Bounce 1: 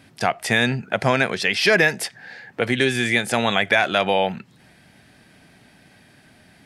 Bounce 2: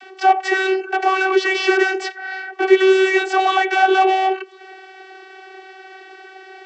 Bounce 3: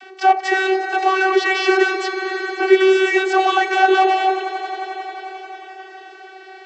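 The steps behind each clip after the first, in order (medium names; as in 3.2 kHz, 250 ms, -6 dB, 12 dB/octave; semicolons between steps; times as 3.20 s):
steep high-pass 220 Hz 48 dB/octave; overdrive pedal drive 28 dB, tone 3.1 kHz, clips at -4 dBFS; vocoder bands 32, saw 380 Hz; trim -2 dB
echo with a slow build-up 89 ms, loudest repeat 5, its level -15 dB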